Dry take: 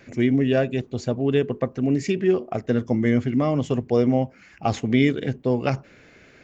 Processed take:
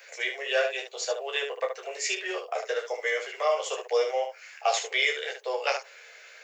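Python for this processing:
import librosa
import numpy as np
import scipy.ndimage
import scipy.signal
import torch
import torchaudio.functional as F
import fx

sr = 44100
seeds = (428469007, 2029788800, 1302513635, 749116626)

y = scipy.signal.sosfilt(scipy.signal.butter(12, 440.0, 'highpass', fs=sr, output='sos'), x)
y = fx.tilt_eq(y, sr, slope=3.0)
y = fx.room_early_taps(y, sr, ms=(13, 29, 74), db=(-3.5, -6.0, -6.5))
y = y * 10.0 ** (-2.0 / 20.0)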